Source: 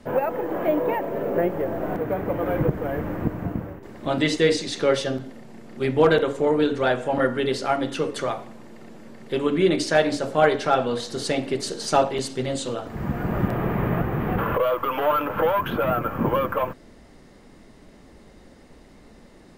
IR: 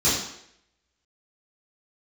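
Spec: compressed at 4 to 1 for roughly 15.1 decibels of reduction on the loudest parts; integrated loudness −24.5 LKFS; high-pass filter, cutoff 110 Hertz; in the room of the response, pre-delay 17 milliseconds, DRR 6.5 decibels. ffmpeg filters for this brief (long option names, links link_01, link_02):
-filter_complex "[0:a]highpass=110,acompressor=threshold=-32dB:ratio=4,asplit=2[link_01][link_02];[1:a]atrim=start_sample=2205,adelay=17[link_03];[link_02][link_03]afir=irnorm=-1:irlink=0,volume=-22dB[link_04];[link_01][link_04]amix=inputs=2:normalize=0,volume=8dB"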